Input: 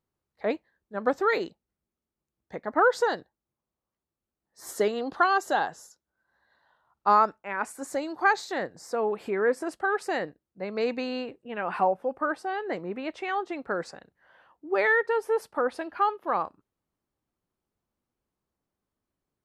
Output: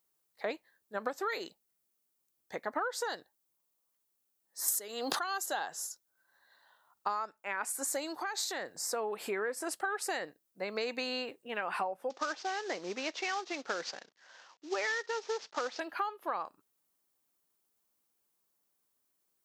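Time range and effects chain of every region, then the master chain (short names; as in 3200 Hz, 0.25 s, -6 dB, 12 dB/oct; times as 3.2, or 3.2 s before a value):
4.68–5.46 high shelf 5500 Hz +8 dB + backwards sustainer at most 25 dB/s
8.19–8.77 HPF 45 Hz + compressor, threshold -32 dBFS
12.1–15.8 CVSD 32 kbps + HPF 170 Hz
whole clip: RIAA curve recording; compressor 10:1, threshold -31 dBFS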